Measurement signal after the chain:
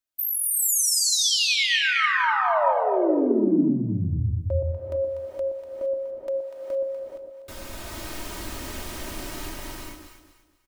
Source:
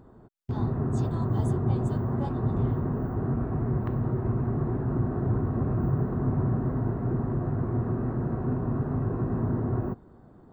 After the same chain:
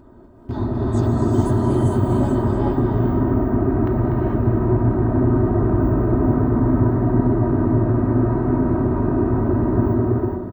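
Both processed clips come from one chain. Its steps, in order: comb 3.2 ms, depth 59%; on a send: echo whose repeats swap between lows and highs 122 ms, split 810 Hz, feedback 56%, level -3.5 dB; on the sum: gated-style reverb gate 480 ms rising, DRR -2 dB; trim +4.5 dB

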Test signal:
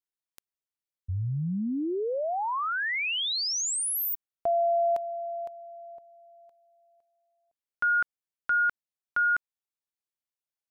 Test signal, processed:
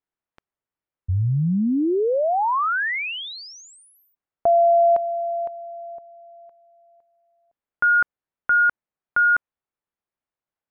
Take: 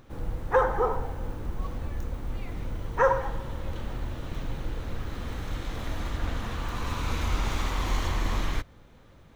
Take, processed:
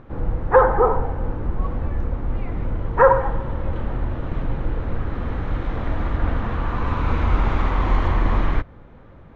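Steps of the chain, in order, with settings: low-pass 1.7 kHz 12 dB/octave; trim +9 dB

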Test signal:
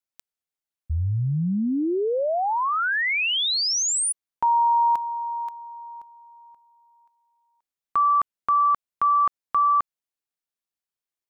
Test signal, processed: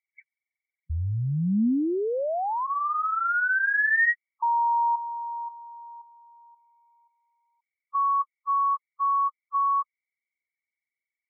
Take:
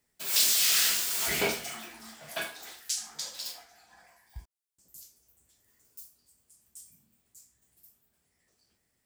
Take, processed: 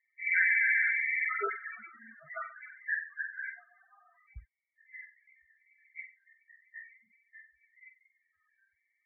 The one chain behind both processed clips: knee-point frequency compression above 1.1 kHz 4:1; loudest bins only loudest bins 8; dynamic bell 230 Hz, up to +6 dB, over -44 dBFS, Q 1.9; trim -4 dB

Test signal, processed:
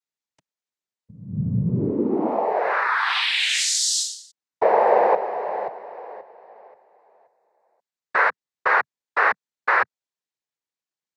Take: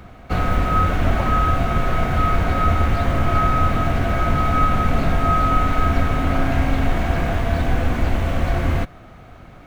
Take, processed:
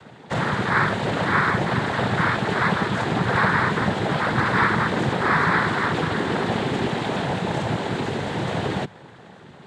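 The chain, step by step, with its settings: noise-vocoded speech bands 6

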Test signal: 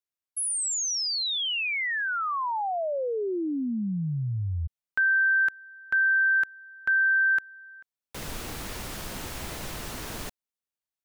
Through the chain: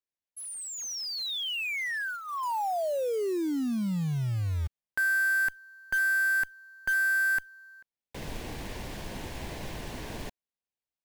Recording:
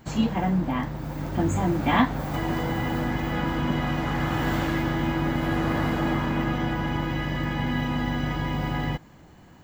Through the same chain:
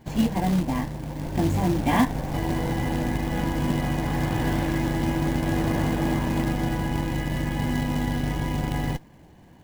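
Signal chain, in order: in parallel at -9 dB: Schmitt trigger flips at -22 dBFS; on the sum: low-pass 2.6 kHz 6 dB/octave; peaking EQ 1.3 kHz -13 dB 0.26 oct; short-mantissa float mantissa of 2-bit

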